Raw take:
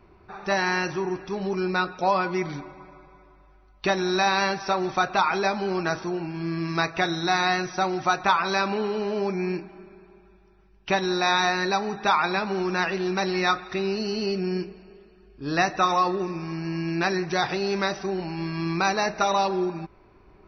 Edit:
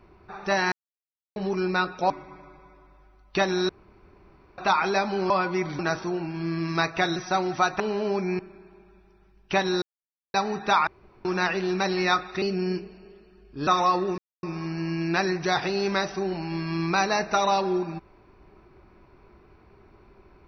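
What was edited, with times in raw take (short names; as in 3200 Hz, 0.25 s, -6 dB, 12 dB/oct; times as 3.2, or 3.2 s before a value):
0.72–1.36 mute
2.1–2.59 move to 5.79
4.18–5.07 room tone
7.16–7.63 cut
8.27–8.91 cut
9.5–9.76 cut
11.19–11.71 mute
12.24–12.62 room tone
13.79–14.27 cut
15.52–15.79 cut
16.3 insert silence 0.25 s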